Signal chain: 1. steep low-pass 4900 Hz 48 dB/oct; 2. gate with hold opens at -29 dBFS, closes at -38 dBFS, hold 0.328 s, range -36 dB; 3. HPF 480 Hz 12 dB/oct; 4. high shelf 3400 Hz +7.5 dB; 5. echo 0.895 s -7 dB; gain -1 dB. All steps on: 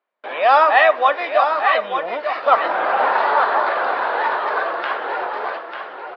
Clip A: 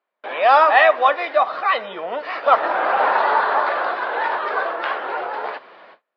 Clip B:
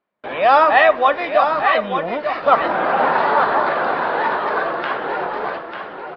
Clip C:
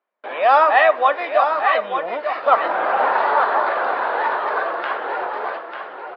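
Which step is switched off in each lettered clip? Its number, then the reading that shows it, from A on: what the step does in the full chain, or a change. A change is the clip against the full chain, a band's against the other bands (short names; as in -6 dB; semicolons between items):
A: 5, momentary loudness spread change +2 LU; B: 3, 250 Hz band +8.5 dB; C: 4, 4 kHz band -3.0 dB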